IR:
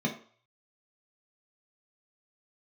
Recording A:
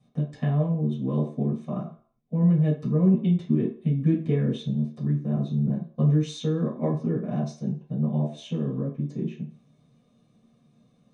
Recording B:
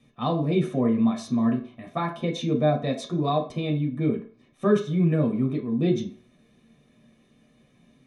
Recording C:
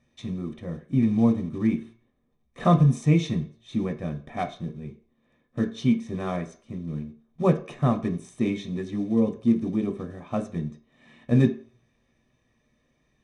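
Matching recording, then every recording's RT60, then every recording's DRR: B; 0.45 s, 0.45 s, 0.45 s; -7.0 dB, 0.0 dB, 4.0 dB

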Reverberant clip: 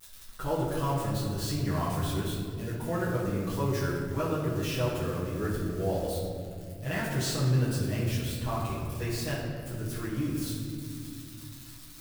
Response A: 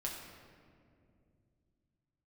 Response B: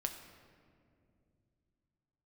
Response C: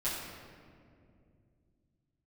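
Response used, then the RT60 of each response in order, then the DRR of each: C; 2.4 s, 2.4 s, 2.4 s; -3.0 dB, 4.5 dB, -11.5 dB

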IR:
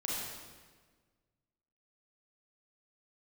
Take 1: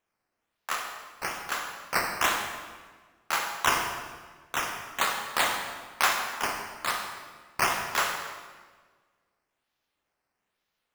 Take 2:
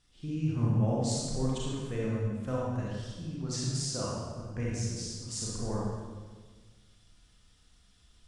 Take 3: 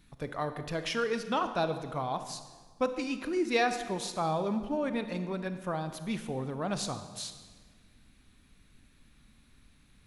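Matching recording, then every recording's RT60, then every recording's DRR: 2; 1.5 s, 1.5 s, 1.5 s; 3.0 dB, -5.5 dB, 9.5 dB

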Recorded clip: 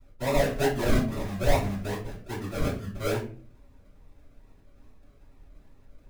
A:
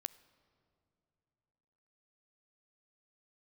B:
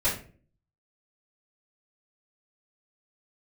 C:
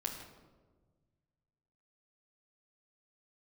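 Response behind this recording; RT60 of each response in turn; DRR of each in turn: B; 2.9 s, 0.40 s, 1.4 s; 17.0 dB, -12.5 dB, -1.5 dB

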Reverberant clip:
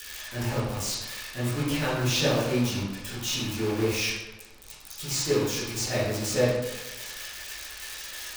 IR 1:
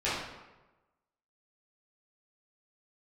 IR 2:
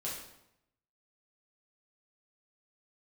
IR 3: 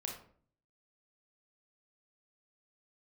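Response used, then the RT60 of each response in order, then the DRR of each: 1; 1.1 s, 0.80 s, 0.50 s; -12.0 dB, -6.5 dB, 0.0 dB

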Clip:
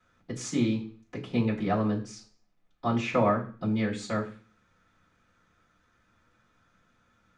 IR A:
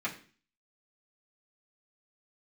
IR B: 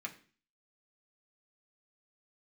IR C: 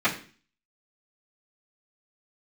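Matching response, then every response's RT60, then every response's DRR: C; 0.40 s, 0.40 s, 0.40 s; -8.0 dB, -0.5 dB, -17.0 dB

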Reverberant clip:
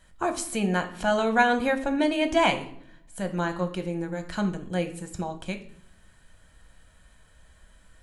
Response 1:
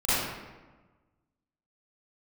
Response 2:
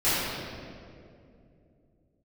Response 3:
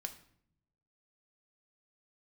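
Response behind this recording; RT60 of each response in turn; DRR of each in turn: 3; 1.3 s, 2.5 s, 0.65 s; -15.5 dB, -15.5 dB, 6.0 dB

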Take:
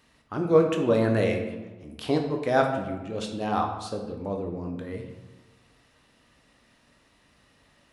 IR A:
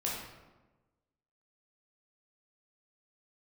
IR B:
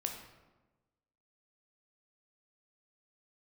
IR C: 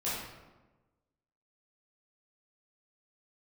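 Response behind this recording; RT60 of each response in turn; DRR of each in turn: B; 1.2 s, 1.2 s, 1.2 s; -5.0 dB, 2.5 dB, -10.0 dB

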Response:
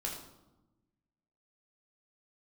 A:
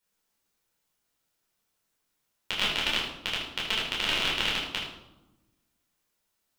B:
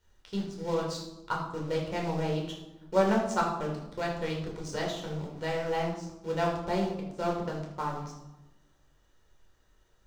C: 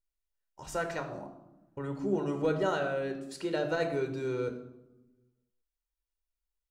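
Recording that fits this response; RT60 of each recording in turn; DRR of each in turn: B; 1.0 s, 1.0 s, 1.1 s; -6.0 dB, -2.0 dB, 5.0 dB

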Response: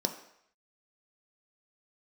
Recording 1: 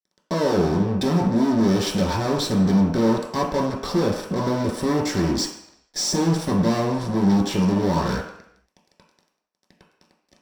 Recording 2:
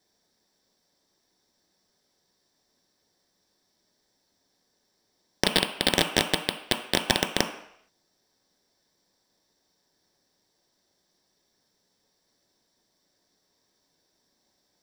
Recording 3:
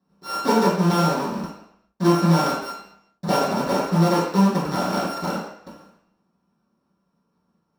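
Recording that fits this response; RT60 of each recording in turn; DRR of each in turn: 2; 0.70 s, 0.70 s, 0.70 s; -2.5 dB, 4.5 dB, -11.0 dB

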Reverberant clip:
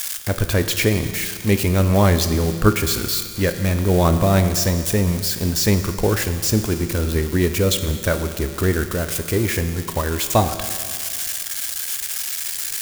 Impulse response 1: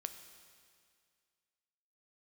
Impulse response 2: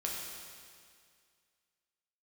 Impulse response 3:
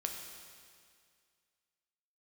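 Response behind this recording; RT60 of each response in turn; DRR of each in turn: 1; 2.1 s, 2.1 s, 2.1 s; 8.0 dB, -3.0 dB, 2.0 dB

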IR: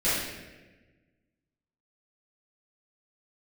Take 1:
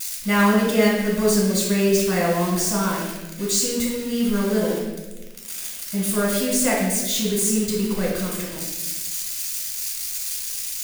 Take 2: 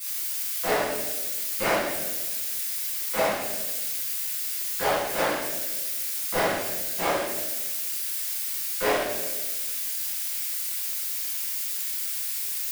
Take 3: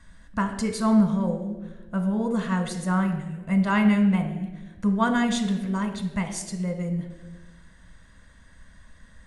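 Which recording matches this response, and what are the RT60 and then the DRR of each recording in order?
2; 1.2 s, 1.2 s, 1.2 s; -4.0 dB, -13.5 dB, 6.0 dB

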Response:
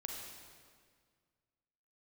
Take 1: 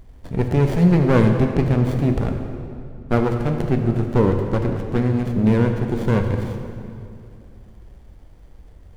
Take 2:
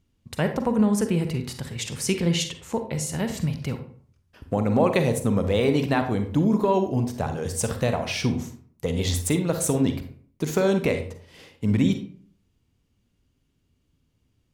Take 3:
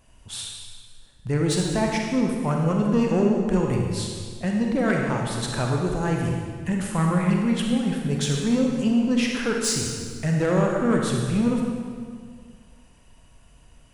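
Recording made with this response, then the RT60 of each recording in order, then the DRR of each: 3; 2.5 s, 0.50 s, 1.8 s; 4.0 dB, 7.0 dB, 0.0 dB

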